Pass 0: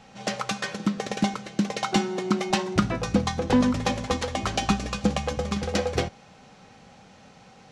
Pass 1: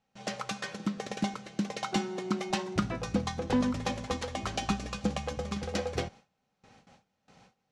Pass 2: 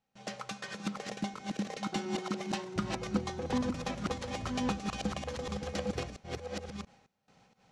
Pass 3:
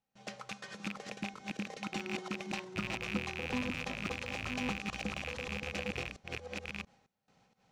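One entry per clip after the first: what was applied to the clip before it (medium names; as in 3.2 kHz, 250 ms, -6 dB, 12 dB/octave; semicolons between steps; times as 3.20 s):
gate with hold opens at -40 dBFS; trim -7 dB
chunks repeated in reverse 685 ms, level -2 dB; trim -5 dB
rattle on loud lows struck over -42 dBFS, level -21 dBFS; trim -5 dB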